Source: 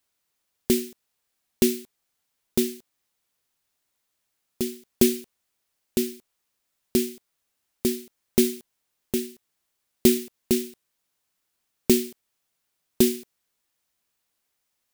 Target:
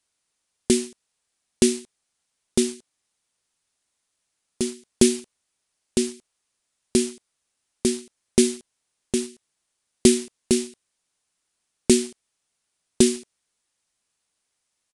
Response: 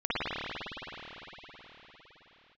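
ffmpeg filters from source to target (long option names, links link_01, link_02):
-filter_complex "[0:a]highshelf=frequency=7500:gain=8.5,asplit=2[link_01][link_02];[link_02]acrusher=bits=4:mix=0:aa=0.000001,volume=-10.5dB[link_03];[link_01][link_03]amix=inputs=2:normalize=0,aresample=22050,aresample=44100"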